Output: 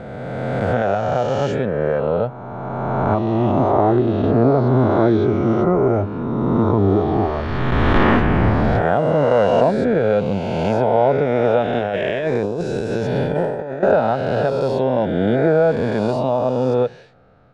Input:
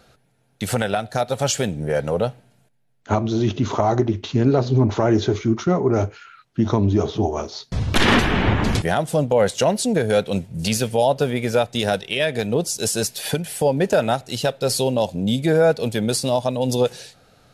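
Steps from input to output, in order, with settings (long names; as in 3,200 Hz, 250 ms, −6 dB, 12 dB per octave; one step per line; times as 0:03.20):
peak hold with a rise ahead of every peak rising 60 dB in 2.51 s
0:11.79–0:13.83: compressor whose output falls as the input rises −18 dBFS, ratio −0.5
low-pass filter 1,500 Hz 12 dB per octave
level −1 dB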